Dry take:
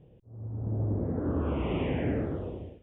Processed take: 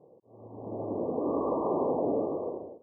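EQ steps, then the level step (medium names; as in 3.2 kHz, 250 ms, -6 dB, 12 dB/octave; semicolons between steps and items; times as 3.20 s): high-pass 460 Hz 12 dB/octave; brick-wall FIR low-pass 1.2 kHz; +8.5 dB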